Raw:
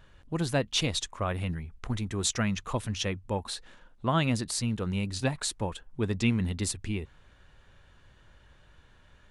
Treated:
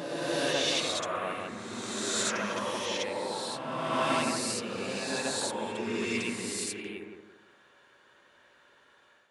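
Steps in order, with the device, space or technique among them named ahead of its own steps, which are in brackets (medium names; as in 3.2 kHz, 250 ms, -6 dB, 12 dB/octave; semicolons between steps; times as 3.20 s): bucket-brigade echo 167 ms, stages 2048, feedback 36%, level -4 dB; ghost voice (reverse; reverberation RT60 2.2 s, pre-delay 46 ms, DRR -6 dB; reverse; high-pass 400 Hz 12 dB/octave); trim -5 dB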